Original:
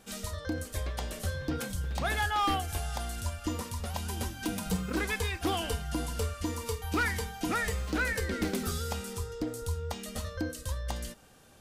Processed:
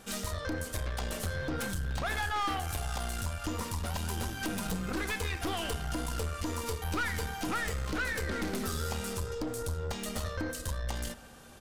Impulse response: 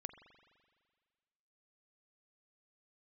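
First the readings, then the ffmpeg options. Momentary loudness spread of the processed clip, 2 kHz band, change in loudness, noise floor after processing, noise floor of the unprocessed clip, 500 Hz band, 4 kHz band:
4 LU, -1.0 dB, -1.5 dB, -43 dBFS, -48 dBFS, -1.0 dB, -1.0 dB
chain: -filter_complex "[0:a]aresample=32000,aresample=44100,acompressor=threshold=-33dB:ratio=6,asplit=2[a][b];[1:a]atrim=start_sample=2205,asetrate=48510,aresample=44100[c];[b][c]afir=irnorm=-1:irlink=0,volume=6.5dB[d];[a][d]amix=inputs=2:normalize=0,aeval=exprs='(tanh(28.2*val(0)+0.5)-tanh(0.5))/28.2':c=same,equalizer=f=1.3k:t=o:w=0.77:g=2.5"

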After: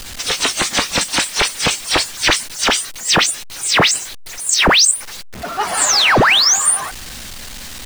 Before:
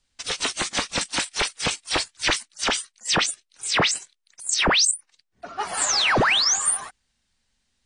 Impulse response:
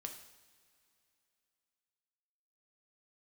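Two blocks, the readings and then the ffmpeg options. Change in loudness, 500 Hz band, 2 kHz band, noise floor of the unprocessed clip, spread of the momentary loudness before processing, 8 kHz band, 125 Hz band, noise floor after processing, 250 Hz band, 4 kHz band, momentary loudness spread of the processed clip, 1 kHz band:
+8.0 dB, +8.0 dB, +8.0 dB, -74 dBFS, 12 LU, +8.5 dB, +8.0 dB, -31 dBFS, +8.0 dB, +8.0 dB, 19 LU, +8.0 dB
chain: -af "aeval=exprs='val(0)+0.5*0.0251*sgn(val(0))':c=same,volume=7dB"

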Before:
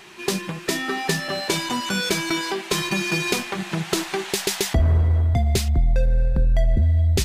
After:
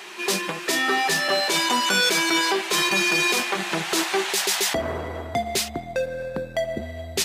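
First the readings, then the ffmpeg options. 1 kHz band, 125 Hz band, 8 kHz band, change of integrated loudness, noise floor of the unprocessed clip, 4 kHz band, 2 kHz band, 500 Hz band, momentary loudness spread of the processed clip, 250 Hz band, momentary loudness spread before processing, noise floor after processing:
+5.0 dB, -17.5 dB, +3.5 dB, +0.5 dB, -36 dBFS, +4.0 dB, +4.5 dB, +1.5 dB, 10 LU, -2.5 dB, 7 LU, -37 dBFS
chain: -af "highpass=370,alimiter=limit=-18dB:level=0:latency=1:release=15,volume=6dB"

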